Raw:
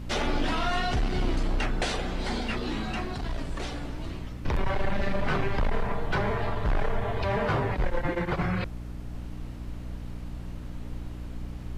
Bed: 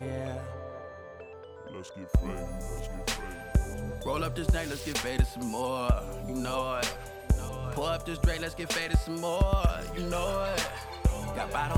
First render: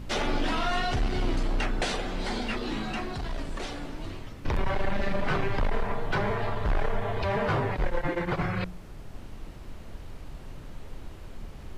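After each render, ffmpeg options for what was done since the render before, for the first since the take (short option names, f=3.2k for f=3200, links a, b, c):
-af "bandreject=f=60:t=h:w=4,bandreject=f=120:t=h:w=4,bandreject=f=180:t=h:w=4,bandreject=f=240:t=h:w=4,bandreject=f=300:t=h:w=4"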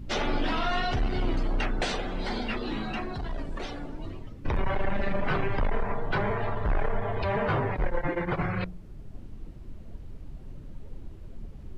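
-af "afftdn=nr=12:nf=-43"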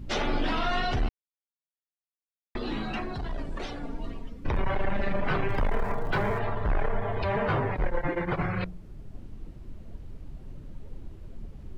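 -filter_complex "[0:a]asettb=1/sr,asplit=3[a][b][c];[a]atrim=end=3.834[d];[b]atrim=start=3.83:end=4.44,asetpts=PTS-STARTPTS,afade=t=in:d=0.004:c=qsin,afade=t=out:st=0.606:d=0.004:c=qsin,aecho=1:1:4.3:0.65,atrim=end_sample=26901[e];[c]atrim=start=4.436[f];[d][e]acrossfade=d=0.004:c1=hsin:c2=qsin[g];[g][f]acrossfade=d=0.004:c1=qsin:c2=hsin,asettb=1/sr,asplit=3[h][i][j];[h]atrim=end=5.494[k];[i]atrim=start=5.49:end=6.39,asetpts=PTS-STARTPTS,afade=t=in:d=0.004:c=qsin,afade=t=out:st=0.896:d=0.004:c=qsin,aeval=exprs='val(0)+0.5*0.00631*sgn(val(0))':c=same[l];[j]atrim=start=6.386[m];[k][l]acrossfade=d=0.004:c1=hsin:c2=qsin[n];[n][m]acrossfade=d=0.004:c1=qsin:c2=hsin,asplit=3[o][p][q];[o]atrim=end=1.09,asetpts=PTS-STARTPTS,afade=t=out:st=1.086:d=0.004:c=hsin[r];[p]atrim=start=1.09:end=2.55,asetpts=PTS-STARTPTS,volume=0[s];[q]atrim=start=2.55,asetpts=PTS-STARTPTS,afade=t=in:d=0.004:c=hsin[t];[r][s][t]concat=n=3:v=0:a=1"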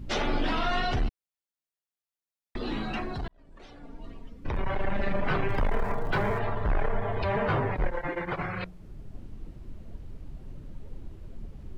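-filter_complex "[0:a]asettb=1/sr,asplit=3[a][b][c];[a]atrim=end=1.024[d];[b]atrim=start=1.02:end=2.6,asetpts=PTS-STARTPTS,afade=t=in:d=0.004:c=qsin,afade=t=out:st=1.576:d=0.004:c=qsin,acrossover=split=360|3000[e][f][g];[f]acompressor=threshold=-40dB:ratio=6:attack=3.2:release=140:knee=2.83:detection=peak[h];[e][h][g]amix=inputs=3:normalize=0[i];[c]atrim=start=2.596[j];[d][i]acrossfade=d=0.004:c1=hsin:c2=qsin[k];[k][j]acrossfade=d=0.004:c1=qsin:c2=hsin,asettb=1/sr,asplit=3[l][m][n];[l]atrim=end=7.914[o];[m]atrim=start=7.91:end=8.8,asetpts=PTS-STARTPTS,afade=t=in:d=0.004:c=qsin,afade=t=out:st=0.886:d=0.004:c=qsin,lowshelf=f=400:g=-7[p];[n]atrim=start=8.796[q];[o][p]acrossfade=d=0.004:c1=hsin:c2=qsin[r];[r][q]acrossfade=d=0.004:c1=qsin:c2=hsin,asplit=2[s][t];[s]atrim=end=3.28,asetpts=PTS-STARTPTS,afade=t=out:st=3.276:d=0.004:c=hsin[u];[t]atrim=start=3.28,asetpts=PTS-STARTPTS,afade=t=in:d=1.78[v];[u][v]concat=n=2:v=0:a=1"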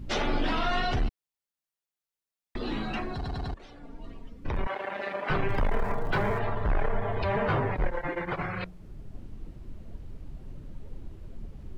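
-filter_complex "[0:a]asettb=1/sr,asplit=3[a][b][c];[a]atrim=end=4.674[d];[b]atrim=start=4.67:end=5.3,asetpts=PTS-STARTPTS,afade=t=in:d=0.004:c=qsin,afade=t=out:st=0.626:d=0.004:c=qsin,highpass=440[e];[c]atrim=start=5.296[f];[d][e]acrossfade=d=0.004:c1=hsin:c2=qsin[g];[g][f]acrossfade=d=0.004:c1=qsin:c2=hsin,asplit=5[h][i][j][k][l];[h]atrim=end=3.242[m];[i]atrim=start=3.138:end=3.242[n];[j]atrim=start=3.138:end=3.242[o];[k]atrim=start=3.138:end=3.242[p];[l]atrim=start=3.538[q];[m][n]acrossfade=d=0.004:c1=hsin:c2=hsin[r];[r][o]acrossfade=d=0.004:c1=hsin:c2=hsin[s];[s][p]acrossfade=d=0.004:c1=hsin:c2=hsin[t];[t][q]acrossfade=d=0.004:c1=hsin:c2=hsin"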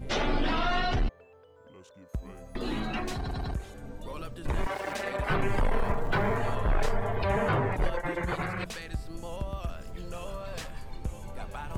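-filter_complex "[1:a]volume=-10dB[a];[0:a][a]amix=inputs=2:normalize=0"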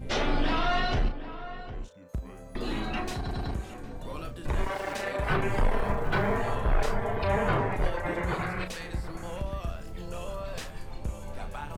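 -filter_complex "[0:a]asplit=2[a][b];[b]adelay=34,volume=-8dB[c];[a][c]amix=inputs=2:normalize=0,asplit=2[d][e];[e]adelay=758,volume=-12dB,highshelf=f=4k:g=-17.1[f];[d][f]amix=inputs=2:normalize=0"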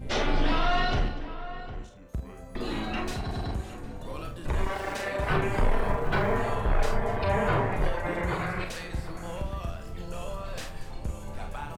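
-filter_complex "[0:a]asplit=2[a][b];[b]adelay=47,volume=-8dB[c];[a][c]amix=inputs=2:normalize=0,aecho=1:1:244:0.15"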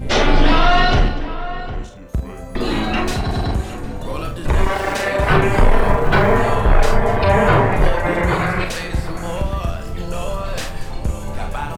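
-af "volume=12dB,alimiter=limit=-3dB:level=0:latency=1"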